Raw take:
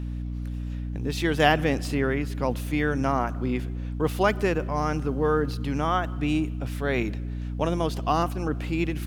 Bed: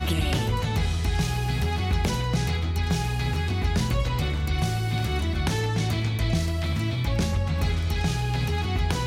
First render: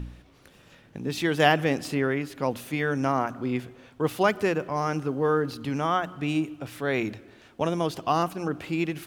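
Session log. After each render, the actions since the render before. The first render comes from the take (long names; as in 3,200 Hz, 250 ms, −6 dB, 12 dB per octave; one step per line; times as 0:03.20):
hum removal 60 Hz, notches 5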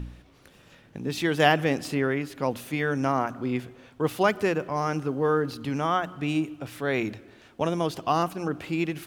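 no processing that can be heard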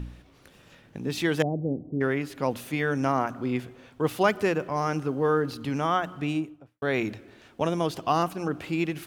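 0:01.42–0:02.01: Gaussian smoothing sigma 17 samples
0:06.17–0:06.82: fade out and dull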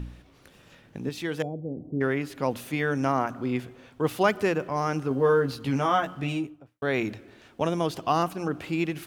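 0:01.09–0:01.77: tuned comb filter 480 Hz, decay 0.33 s, harmonics odd, mix 50%
0:05.09–0:06.47: double-tracking delay 15 ms −3.5 dB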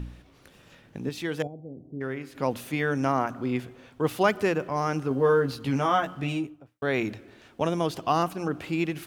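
0:01.47–0:02.35: tuned comb filter 130 Hz, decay 0.95 s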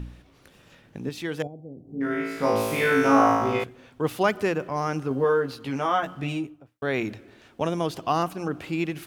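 0:01.85–0:03.64: flutter between parallel walls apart 3.1 metres, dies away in 1.3 s
0:05.24–0:06.03: bass and treble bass −7 dB, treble −3 dB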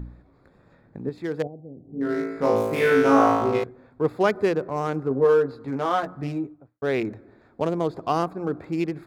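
adaptive Wiener filter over 15 samples
dynamic equaliser 430 Hz, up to +5 dB, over −38 dBFS, Q 2.1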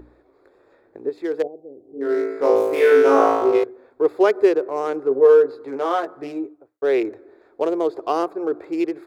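low shelf with overshoot 260 Hz −13 dB, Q 3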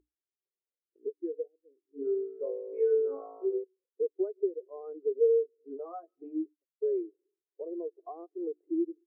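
downward compressor 5 to 1, threshold −27 dBFS, peak gain reduction 16 dB
every bin expanded away from the loudest bin 2.5 to 1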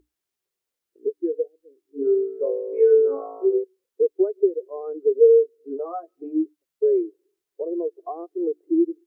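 level +10.5 dB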